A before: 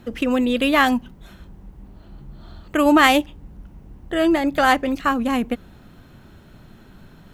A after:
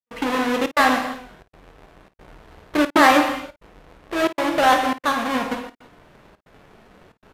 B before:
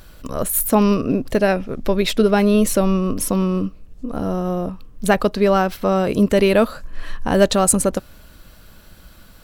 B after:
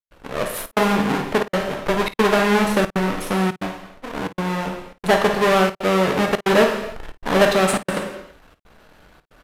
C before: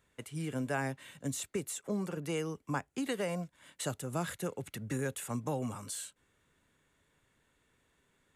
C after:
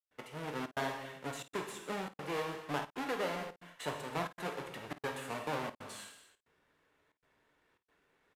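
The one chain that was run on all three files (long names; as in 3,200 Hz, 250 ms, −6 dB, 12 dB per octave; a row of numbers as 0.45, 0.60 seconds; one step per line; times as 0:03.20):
each half-wave held at its own peak
reverb whose tail is shaped and stops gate 350 ms falling, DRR 2.5 dB
gate pattern ".xxxxx.xxxxxx" 137 BPM −60 dB
dynamic equaliser 150 Hz, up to +6 dB, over −27 dBFS, Q 1.5
downsampling to 32,000 Hz
bass and treble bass −13 dB, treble −11 dB
on a send: ambience of single reflections 24 ms −17 dB, 53 ms −14.5 dB
on the sum: level −4 dB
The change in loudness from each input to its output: −1.0, −1.5, −2.5 LU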